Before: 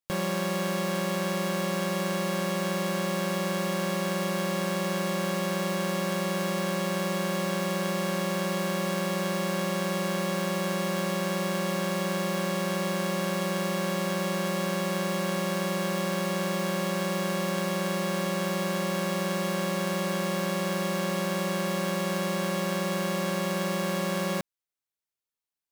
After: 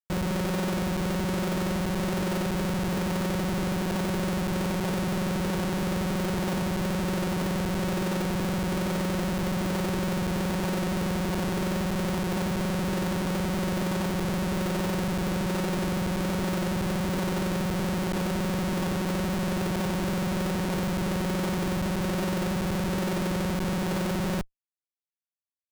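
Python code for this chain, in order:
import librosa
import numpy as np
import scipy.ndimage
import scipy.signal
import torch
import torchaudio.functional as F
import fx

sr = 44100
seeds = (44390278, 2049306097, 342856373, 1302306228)

y = fx.peak_eq(x, sr, hz=2100.0, db=-13.5, octaves=0.9)
y = fx.echo_wet_bandpass(y, sr, ms=528, feedback_pct=80, hz=690.0, wet_db=-19.5)
y = fx.rotary(y, sr, hz=1.2)
y = fx.tilt_shelf(y, sr, db=5.5, hz=970.0)
y = fx.schmitt(y, sr, flips_db=-29.5)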